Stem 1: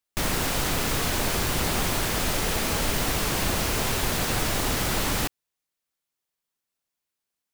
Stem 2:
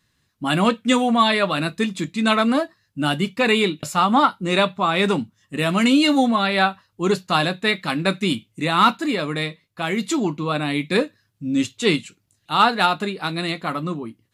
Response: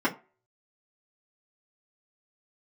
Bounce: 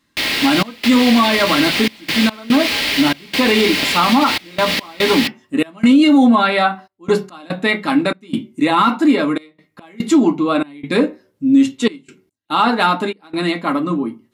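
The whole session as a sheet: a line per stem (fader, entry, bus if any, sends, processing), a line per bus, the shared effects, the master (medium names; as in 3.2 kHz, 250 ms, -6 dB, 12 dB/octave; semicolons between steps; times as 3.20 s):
-1.0 dB, 0.00 s, send -17.5 dB, high-pass 180 Hz 6 dB/octave; high-order bell 3 kHz +14.5 dB
0.0 dB, 0.00 s, send -10 dB, none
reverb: on, RT60 0.35 s, pre-delay 3 ms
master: trance gate "xxx.xxxxx.x." 72 bpm -24 dB; peak limiter -4.5 dBFS, peak gain reduction 8.5 dB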